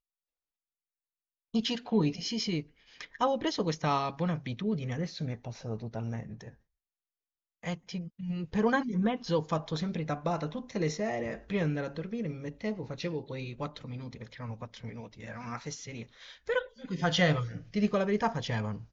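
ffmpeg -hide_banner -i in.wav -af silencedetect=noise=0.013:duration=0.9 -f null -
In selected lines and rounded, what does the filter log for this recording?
silence_start: 0.00
silence_end: 1.54 | silence_duration: 1.54
silence_start: 6.49
silence_end: 7.64 | silence_duration: 1.15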